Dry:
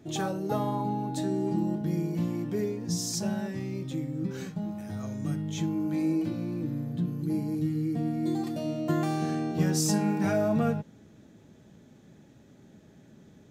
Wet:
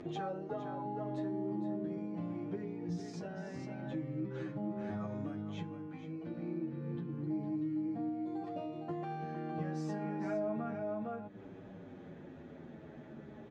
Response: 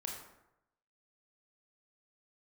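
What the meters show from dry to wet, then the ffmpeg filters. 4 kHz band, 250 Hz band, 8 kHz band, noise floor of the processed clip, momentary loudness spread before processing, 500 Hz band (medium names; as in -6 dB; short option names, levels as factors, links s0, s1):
under -15 dB, -9.5 dB, under -25 dB, -52 dBFS, 8 LU, -7.5 dB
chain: -filter_complex "[0:a]bass=f=250:g=-8,treble=f=4000:g=-14,asplit=2[s0][s1];[s1]aecho=0:1:460:0.447[s2];[s0][s2]amix=inputs=2:normalize=0,acompressor=threshold=0.00631:ratio=5,highshelf=f=3300:g=-11,acompressor=mode=upward:threshold=0.00251:ratio=2.5,lowpass=7000,asplit=2[s3][s4];[s4]adelay=8.5,afreqshift=-0.33[s5];[s3][s5]amix=inputs=2:normalize=1,volume=2.99"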